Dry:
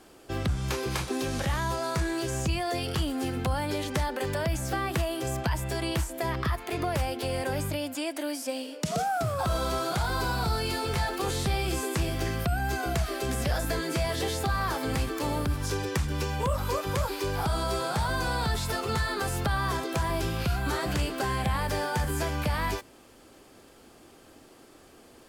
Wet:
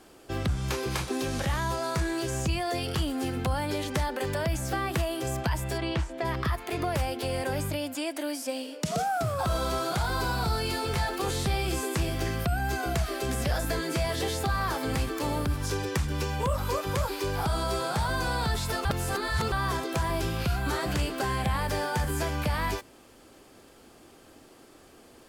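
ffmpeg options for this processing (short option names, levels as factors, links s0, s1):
-filter_complex "[0:a]asplit=3[s0][s1][s2];[s0]afade=t=out:st=5.77:d=0.02[s3];[s1]lowpass=4100,afade=t=in:st=5.77:d=0.02,afade=t=out:st=6.24:d=0.02[s4];[s2]afade=t=in:st=6.24:d=0.02[s5];[s3][s4][s5]amix=inputs=3:normalize=0,asplit=3[s6][s7][s8];[s6]atrim=end=18.852[s9];[s7]atrim=start=18.848:end=19.522,asetpts=PTS-STARTPTS,areverse[s10];[s8]atrim=start=19.518[s11];[s9][s10]acrossfade=d=0.004:c1=hsin:c2=hsin[s12];[s12][s11]acrossfade=d=0.004:c1=hsin:c2=hsin"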